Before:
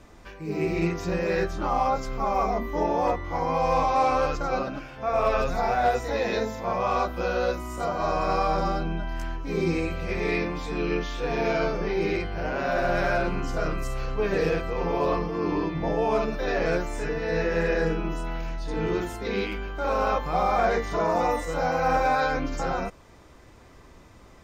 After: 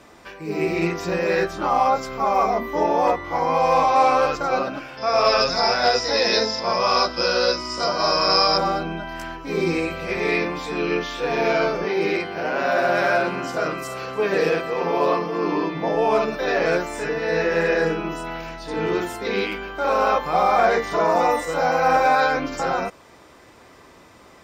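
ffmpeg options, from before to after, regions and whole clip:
-filter_complex "[0:a]asettb=1/sr,asplit=3[a][b][c];[a]atrim=end=4.974[d];[b]atrim=start=4.97:end=8.58,asetpts=PTS-STARTPTS,afade=t=in:d=0.004:c=qsin,afade=t=out:st=3.606:d=0.004:c=qsin,lowpass=f=5.1k:t=q:w=15,bandreject=f=750:w=11[e];[c]atrim=start=8.576[f];[d][e]acrossfade=d=0.004:c1=hsin:c2=qsin[g];[g][f]acrossfade=d=0.004:c1=qsin:c2=hsin,asettb=1/sr,asplit=3[h][i][j];[h]atrim=end=11.844[k];[i]atrim=start=11.84:end=15.95,asetpts=PTS-STARTPTS,afade=t=in:d=0.004:c=qsin,afade=t=out:st=4.106:d=0.004:c=qsin,highpass=130,aecho=1:1:305:0.106,atrim=end_sample=181251[l];[j]atrim=start=15.946[m];[k][l]acrossfade=d=0.004:c1=hsin:c2=qsin[n];[n][m]acrossfade=d=0.004:c1=qsin:c2=hsin,highpass=f=320:p=1,bandreject=f=6.5k:w=14,volume=6.5dB"

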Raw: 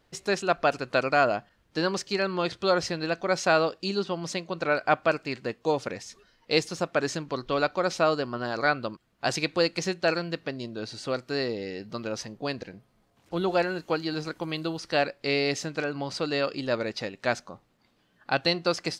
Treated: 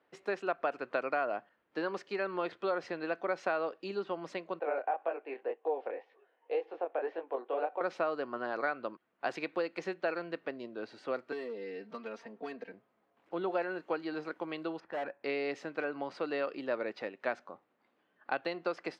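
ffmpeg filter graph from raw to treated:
-filter_complex "[0:a]asettb=1/sr,asplit=3[a][b][c];[a]atrim=end=4.594[d];[b]atrim=start=4.59:end=7.81,asetpts=PTS-STARTPTS,afade=t=in:d=0.004:c=qsin,afade=t=out:st=3.216:d=0.004:c=qsin,highpass=f=320:w=0.5412,highpass=f=320:w=1.3066,equalizer=f=480:t=q:w=4:g=7,equalizer=f=770:t=q:w=4:g=10,equalizer=f=1.3k:t=q:w=4:g=-7,equalizer=f=2.1k:t=q:w=4:g=-4,lowpass=f=3k:w=0.5412,lowpass=f=3k:w=1.3066,acompressor=threshold=-21dB:ratio=2.5:attack=3.2:release=140:knee=1:detection=peak,flanger=delay=18:depth=7.9:speed=1.9[e];[c]atrim=start=7.806[f];[d][e]acrossfade=d=0.004:c1=hsin:c2=qsin[g];[g][f]acrossfade=d=0.004:c1=qsin:c2=hsin,asettb=1/sr,asplit=3[h][i][j];[h]atrim=end=11.324[k];[i]atrim=start=11.32:end=12.72,asetpts=PTS-STARTPTS,afade=t=in:d=0.004:c=qsin,afade=t=out:st=1.396:d=0.004:c=qsin,volume=24.5dB,asoftclip=hard,volume=-24.5dB,aecho=1:1:4.4:0.99,atrim=end_sample=61740,acrossover=split=400|2300[l][m][n];[l]acompressor=threshold=-39dB:ratio=4[o];[m]acompressor=threshold=-39dB:ratio=4[p];[n]acompressor=threshold=-43dB:ratio=4[q];[o][p][q]amix=inputs=3:normalize=0[r];[j]atrim=start=12.716[s];[k][r]acrossfade=d=0.004:c1=hsin:c2=qsin[t];[t][s]acrossfade=d=0.004:c1=qsin:c2=hsin,asettb=1/sr,asplit=3[u][v][w];[u]atrim=end=14.804[x];[v]atrim=start=14.8:end=15.24,asetpts=PTS-STARTPTS,afade=t=in:d=0.004:c=qsin,afade=t=out:st=0.436:d=0.004:c=qsin,lowpass=1.8k,aecho=1:1:1.2:0.39,atrim=end_sample=19404,volume=29.5dB,asoftclip=hard,volume=-29.5dB[y];[w]atrim=start=15.236[z];[x][y]acrossfade=d=0.004:c1=hsin:c2=qsin[aa];[aa][z]acrossfade=d=0.004:c1=qsin:c2=hsin,acompressor=threshold=-24dB:ratio=6,highpass=60,acrossover=split=250 2700:gain=0.0708 1 0.0794[ab][ac][ad];[ab][ac][ad]amix=inputs=3:normalize=0,volume=-3.5dB"

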